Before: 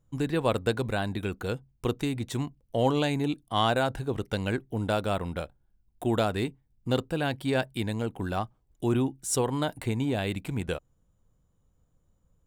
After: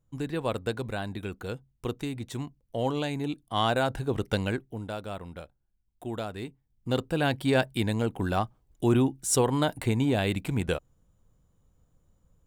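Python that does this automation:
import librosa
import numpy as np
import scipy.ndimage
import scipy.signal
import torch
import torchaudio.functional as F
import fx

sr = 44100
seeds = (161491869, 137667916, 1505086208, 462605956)

y = fx.gain(x, sr, db=fx.line((3.12, -4.0), (4.34, 3.0), (4.89, -8.5), (6.37, -8.5), (7.25, 3.0)))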